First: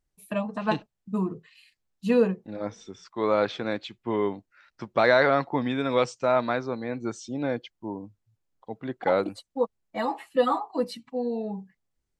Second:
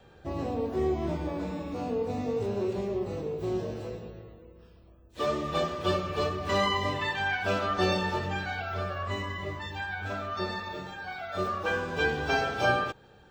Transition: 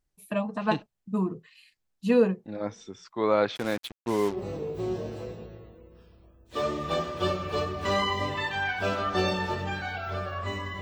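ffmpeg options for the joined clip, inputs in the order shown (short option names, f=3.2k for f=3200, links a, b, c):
-filter_complex "[0:a]asplit=3[a][b][c];[a]afade=t=out:st=3.55:d=0.02[d];[b]acrusher=bits=5:mix=0:aa=0.5,afade=t=in:st=3.55:d=0.02,afade=t=out:st=4.39:d=0.02[e];[c]afade=t=in:st=4.39:d=0.02[f];[d][e][f]amix=inputs=3:normalize=0,apad=whole_dur=10.81,atrim=end=10.81,atrim=end=4.39,asetpts=PTS-STARTPTS[g];[1:a]atrim=start=2.93:end=9.45,asetpts=PTS-STARTPTS[h];[g][h]acrossfade=d=0.1:c1=tri:c2=tri"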